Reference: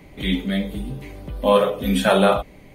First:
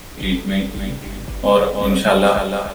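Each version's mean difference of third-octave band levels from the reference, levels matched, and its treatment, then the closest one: 7.0 dB: added noise pink -40 dBFS; on a send: feedback delay 296 ms, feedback 32%, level -8 dB; on the sum: trim +2 dB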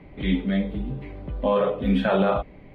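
5.0 dB: peak limiter -10.5 dBFS, peak gain reduction 7 dB; distance through air 380 m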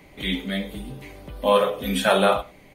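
2.5 dB: bass shelf 380 Hz -7.5 dB; on a send: delay 97 ms -21.5 dB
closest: third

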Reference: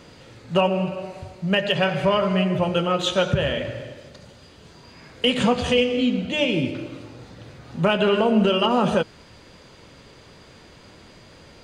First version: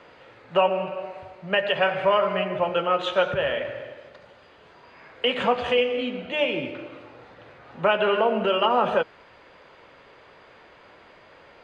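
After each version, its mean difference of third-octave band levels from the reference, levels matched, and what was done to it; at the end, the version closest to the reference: 5.5 dB: three-band isolator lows -16 dB, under 430 Hz, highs -22 dB, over 2.9 kHz; trim +2 dB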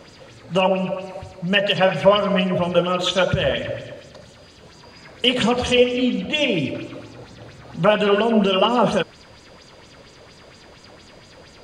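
2.0 dB: sweeping bell 4.3 Hz 520–7900 Hz +10 dB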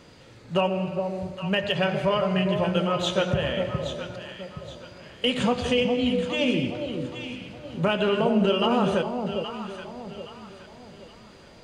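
3.5 dB: echo whose repeats swap between lows and highs 411 ms, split 860 Hz, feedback 59%, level -5 dB; trim -4 dB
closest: second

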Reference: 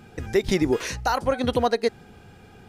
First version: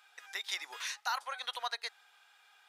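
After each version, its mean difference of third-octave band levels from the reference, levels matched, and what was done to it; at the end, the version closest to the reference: 13.5 dB: high-pass 970 Hz 24 dB/octave; peaking EQ 3.6 kHz +7 dB 0.24 oct; trim -7.5 dB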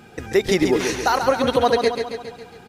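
5.0 dB: bass shelf 130 Hz -11.5 dB; feedback delay 137 ms, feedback 57%, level -6.5 dB; trim +4.5 dB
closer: second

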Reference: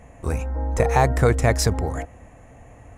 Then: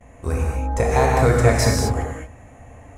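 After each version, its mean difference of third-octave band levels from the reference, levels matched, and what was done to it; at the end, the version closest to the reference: 5.0 dB: gate with hold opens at -41 dBFS; gated-style reverb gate 260 ms flat, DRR -2.5 dB; trim -1.5 dB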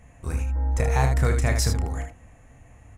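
3.5 dB: peaking EQ 530 Hz -8 dB 2.3 oct; early reflections 30 ms -8 dB, 77 ms -7 dB; trim -3 dB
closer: second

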